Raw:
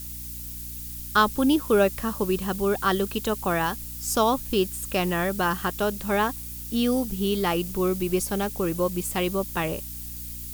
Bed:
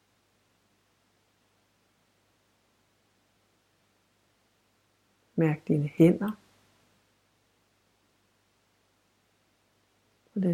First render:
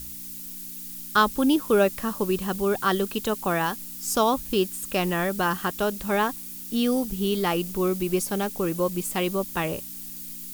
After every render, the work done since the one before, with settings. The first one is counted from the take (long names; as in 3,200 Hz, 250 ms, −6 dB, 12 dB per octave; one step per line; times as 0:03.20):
hum removal 60 Hz, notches 2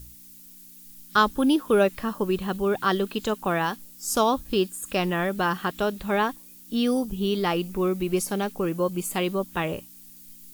noise reduction from a noise print 10 dB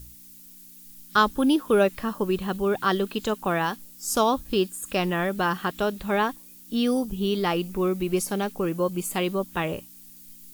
no processing that can be heard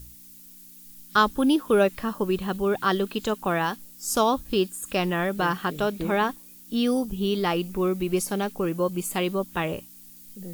mix in bed −12.5 dB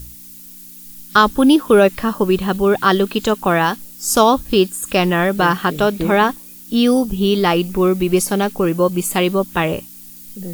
level +9.5 dB
brickwall limiter −1 dBFS, peak gain reduction 3 dB